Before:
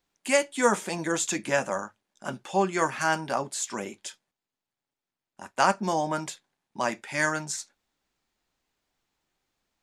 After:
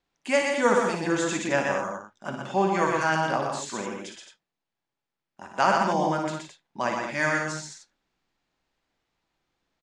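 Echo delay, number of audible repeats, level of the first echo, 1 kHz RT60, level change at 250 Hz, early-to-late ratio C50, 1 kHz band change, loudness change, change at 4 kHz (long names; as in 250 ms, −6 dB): 57 ms, 4, −6.5 dB, no reverb audible, +3.0 dB, no reverb audible, +2.5 dB, +2.0 dB, +0.5 dB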